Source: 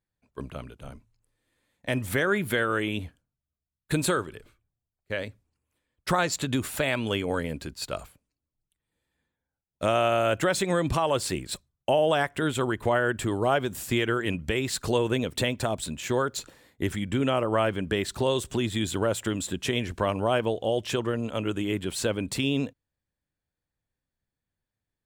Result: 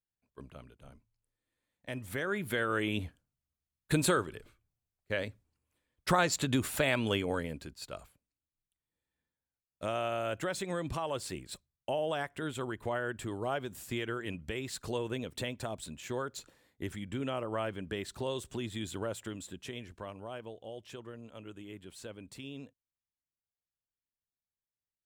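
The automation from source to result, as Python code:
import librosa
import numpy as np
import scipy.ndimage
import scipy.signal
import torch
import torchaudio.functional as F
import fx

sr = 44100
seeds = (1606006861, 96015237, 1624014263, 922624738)

y = fx.gain(x, sr, db=fx.line((2.02, -12.0), (2.99, -2.5), (7.09, -2.5), (7.83, -10.5), (19.01, -10.5), (20.23, -18.5)))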